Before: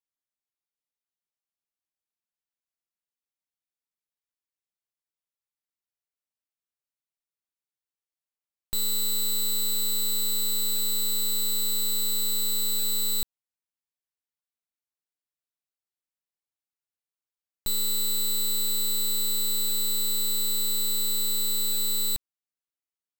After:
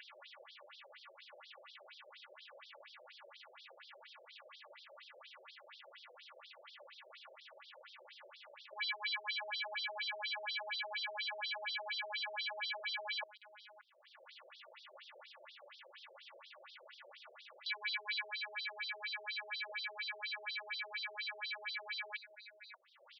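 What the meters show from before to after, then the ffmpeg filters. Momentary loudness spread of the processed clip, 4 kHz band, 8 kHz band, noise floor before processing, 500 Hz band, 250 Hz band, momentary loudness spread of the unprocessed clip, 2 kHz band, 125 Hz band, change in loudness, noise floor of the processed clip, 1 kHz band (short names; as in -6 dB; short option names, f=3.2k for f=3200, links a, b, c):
18 LU, -12.5 dB, under -40 dB, under -85 dBFS, -4.0 dB, under -35 dB, 2 LU, +11.5 dB, n/a, -14.5 dB, -63 dBFS, +5.5 dB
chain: -filter_complex "[0:a]aresample=22050,aresample=44100,asuperstop=centerf=830:order=12:qfactor=4.3,acompressor=mode=upward:threshold=-48dB:ratio=2.5,equalizer=f=620:w=0.57:g=5,asplit=2[a][b];[b]adelay=577.3,volume=-15dB,highshelf=f=4k:g=-13[c];[a][c]amix=inputs=2:normalize=0,acrusher=samples=7:mix=1:aa=0.000001,aeval=exprs='0.112*(cos(1*acos(clip(val(0)/0.112,-1,1)))-cos(1*PI/2))+0.0447*(cos(3*acos(clip(val(0)/0.112,-1,1)))-cos(3*PI/2))+0.00501*(cos(6*acos(clip(val(0)/0.112,-1,1)))-cos(6*PI/2))+0.0447*(cos(7*acos(clip(val(0)/0.112,-1,1)))-cos(7*PI/2))+0.0316*(cos(8*acos(clip(val(0)/0.112,-1,1)))-cos(8*PI/2))':c=same,asoftclip=type=hard:threshold=-38dB,aecho=1:1:3.5:0.93,acompressor=threshold=-41dB:ratio=2,afftfilt=real='re*between(b*sr/1024,490*pow(4500/490,0.5+0.5*sin(2*PI*4.2*pts/sr))/1.41,490*pow(4500/490,0.5+0.5*sin(2*PI*4.2*pts/sr))*1.41)':imag='im*between(b*sr/1024,490*pow(4500/490,0.5+0.5*sin(2*PI*4.2*pts/sr))/1.41,490*pow(4500/490,0.5+0.5*sin(2*PI*4.2*pts/sr))*1.41)':win_size=1024:overlap=0.75,volume=7dB"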